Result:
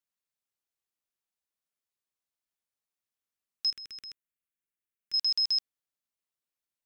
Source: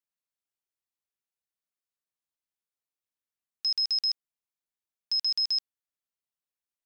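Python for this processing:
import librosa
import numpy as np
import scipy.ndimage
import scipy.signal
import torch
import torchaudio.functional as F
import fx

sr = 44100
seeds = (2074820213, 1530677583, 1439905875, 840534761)

y = fx.fixed_phaser(x, sr, hz=2000.0, stages=4, at=(3.7, 5.14))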